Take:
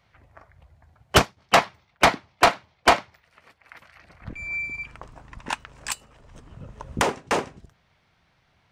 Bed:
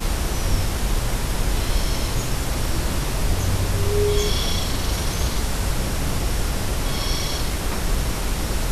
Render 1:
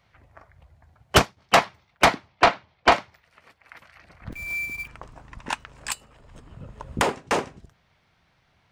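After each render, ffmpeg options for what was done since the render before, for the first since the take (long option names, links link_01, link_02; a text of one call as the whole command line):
ffmpeg -i in.wav -filter_complex "[0:a]asettb=1/sr,asplit=3[link_01][link_02][link_03];[link_01]atrim=end=2.284[link_04];[link_02]atrim=start=2.28:end=2.92,asetpts=PTS-STARTPTS,afade=type=in:duration=0.004:curve=qsin,afade=type=out:start_time=0.636:duration=0.004:curve=qsin,lowpass=4800[link_05];[link_03]atrim=start=2.916[link_06];[link_04][link_05]acrossfade=duration=0.004:curve1=hsin:curve2=qsin[link_07];[link_07][link_06]acrossfade=duration=0.004:curve1=qsin:curve2=hsin,asettb=1/sr,asplit=3[link_08][link_09][link_10];[link_08]atrim=end=4.324[link_11];[link_09]atrim=start=4.32:end=4.88,asetpts=PTS-STARTPTS,afade=type=in:duration=0.004:curve=qsin,afade=type=out:start_time=0.556:duration=0.004:curve=qsin,acrusher=bits=3:mode=log:mix=0:aa=0.000001[link_12];[link_10]atrim=start=4.876[link_13];[link_11][link_12]acrossfade=duration=0.004:curve1=hsin:curve2=qsin[link_14];[link_14][link_13]acrossfade=duration=0.004:curve1=qsin:curve2=hsin,asettb=1/sr,asplit=3[link_15][link_16][link_17];[link_15]atrim=end=5.764[link_18];[link_16]atrim=start=5.76:end=7.17,asetpts=PTS-STARTPTS,afade=type=in:duration=0.004:curve=qsin,afade=type=out:start_time=1.406:duration=0.004:curve=qsin,bandreject=frequency=5900:width=8.8[link_19];[link_17]atrim=start=7.166[link_20];[link_18][link_19]acrossfade=duration=0.004:curve1=hsin:curve2=qsin[link_21];[link_21][link_20]acrossfade=duration=0.004:curve1=qsin:curve2=hsin" out.wav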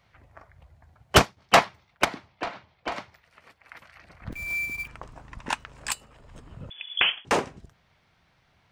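ffmpeg -i in.wav -filter_complex "[0:a]asplit=3[link_01][link_02][link_03];[link_01]afade=type=out:start_time=2.03:duration=0.02[link_04];[link_02]acompressor=threshold=-27dB:ratio=16:attack=3.2:release=140:knee=1:detection=peak,afade=type=in:start_time=2.03:duration=0.02,afade=type=out:start_time=2.96:duration=0.02[link_05];[link_03]afade=type=in:start_time=2.96:duration=0.02[link_06];[link_04][link_05][link_06]amix=inputs=3:normalize=0,asettb=1/sr,asplit=3[link_07][link_08][link_09];[link_07]atrim=end=6.704[link_10];[link_08]atrim=start=6.7:end=7.25,asetpts=PTS-STARTPTS,afade=type=in:duration=0.004:curve=qsin,afade=type=out:start_time=0.546:duration=0.004:curve=qsin,lowpass=frequency=3000:width_type=q:width=0.5098,lowpass=frequency=3000:width_type=q:width=0.6013,lowpass=frequency=3000:width_type=q:width=0.9,lowpass=frequency=3000:width_type=q:width=2.563,afreqshift=-3500[link_11];[link_09]atrim=start=7.246[link_12];[link_10][link_11]acrossfade=duration=0.004:curve1=hsin:curve2=qsin[link_13];[link_13][link_12]acrossfade=duration=0.004:curve1=qsin:curve2=hsin" out.wav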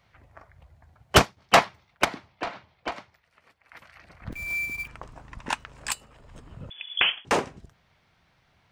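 ffmpeg -i in.wav -filter_complex "[0:a]asplit=3[link_01][link_02][link_03];[link_01]atrim=end=2.912[link_04];[link_02]atrim=start=2.908:end=3.732,asetpts=PTS-STARTPTS,volume=-6dB[link_05];[link_03]atrim=start=3.728[link_06];[link_04][link_05]acrossfade=duration=0.004:curve1=hsin:curve2=hsin[link_07];[link_07][link_06]acrossfade=duration=0.004:curve1=hsin:curve2=hsin" out.wav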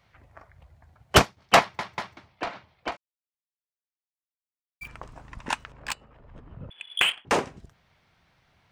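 ffmpeg -i in.wav -filter_complex "[0:a]asplit=3[link_01][link_02][link_03];[link_01]afade=type=out:start_time=2.95:duration=0.02[link_04];[link_02]acrusher=bits=2:mix=0:aa=0.5,afade=type=in:start_time=2.95:duration=0.02,afade=type=out:start_time=4.81:duration=0.02[link_05];[link_03]afade=type=in:start_time=4.81:duration=0.02[link_06];[link_04][link_05][link_06]amix=inputs=3:normalize=0,asettb=1/sr,asplit=3[link_07][link_08][link_09];[link_07]atrim=end=5.724[link_10];[link_08]atrim=start=5.72:end=7.3,asetpts=PTS-STARTPTS,afade=type=in:duration=0.004:curve=qsin,afade=type=out:start_time=1.576:duration=0.004:curve=qsin,adynamicsmooth=sensitivity=3:basefreq=2300[link_11];[link_09]atrim=start=7.296[link_12];[link_10][link_11]acrossfade=duration=0.004:curve1=hsin:curve2=qsin[link_13];[link_13][link_12]acrossfade=duration=0.004:curve1=qsin:curve2=hsin,asplit=4[link_14][link_15][link_16][link_17];[link_14]atrim=end=1.792[link_18];[link_15]atrim=start=1.598:end=1.792[link_19];[link_16]atrim=start=1.598:end=1.792[link_20];[link_17]atrim=start=2.168[link_21];[link_18][link_19]acrossfade=duration=0.004:curve1=hsin:curve2=hsin[link_22];[link_22][link_20]acrossfade=duration=0.004:curve1=hsin:curve2=hsin[link_23];[link_23][link_21]acrossfade=duration=0.004:curve1=hsin:curve2=hsin" out.wav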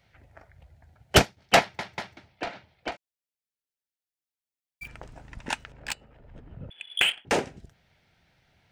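ffmpeg -i in.wav -af "equalizer=frequency=1100:width=4.2:gain=-12" out.wav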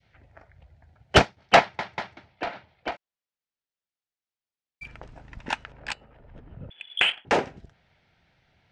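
ffmpeg -i in.wav -af "adynamicequalizer=threshold=0.01:dfrequency=1000:dqfactor=0.72:tfrequency=1000:tqfactor=0.72:attack=5:release=100:ratio=0.375:range=2.5:mode=boostabove:tftype=bell,lowpass=5100" out.wav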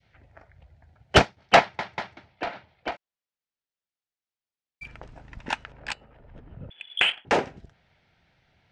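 ffmpeg -i in.wav -af anull out.wav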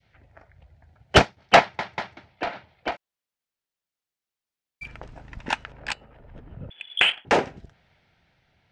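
ffmpeg -i in.wav -af "dynaudnorm=framelen=160:gausssize=11:maxgain=3dB" out.wav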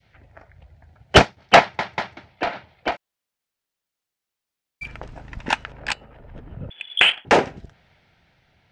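ffmpeg -i in.wav -af "volume=4.5dB,alimiter=limit=-1dB:level=0:latency=1" out.wav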